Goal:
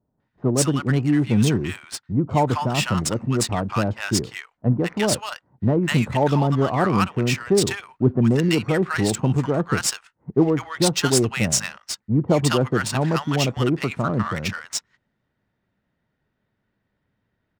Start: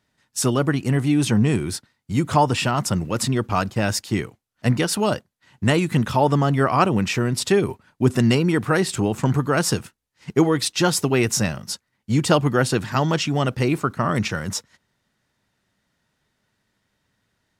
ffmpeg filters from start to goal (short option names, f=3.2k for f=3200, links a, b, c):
-filter_complex "[0:a]acrossover=split=1000[a][b];[b]adelay=200[c];[a][c]amix=inputs=2:normalize=0,adynamicequalizer=threshold=0.00891:dfrequency=8200:dqfactor=1.2:tfrequency=8200:tqfactor=1.2:attack=5:release=100:ratio=0.375:range=3.5:mode=boostabove:tftype=bell,adynamicsmooth=sensitivity=3.5:basefreq=2.1k"